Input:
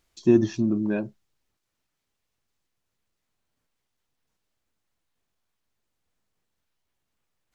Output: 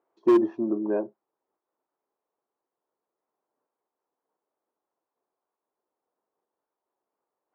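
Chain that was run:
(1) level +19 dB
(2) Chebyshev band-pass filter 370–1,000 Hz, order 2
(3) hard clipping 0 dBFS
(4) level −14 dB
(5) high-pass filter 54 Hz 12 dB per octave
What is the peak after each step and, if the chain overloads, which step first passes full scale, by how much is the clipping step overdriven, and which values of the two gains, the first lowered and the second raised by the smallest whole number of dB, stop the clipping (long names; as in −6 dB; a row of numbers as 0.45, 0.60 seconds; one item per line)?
+11.5, +7.0, 0.0, −14.0, −12.0 dBFS
step 1, 7.0 dB
step 1 +12 dB, step 4 −7 dB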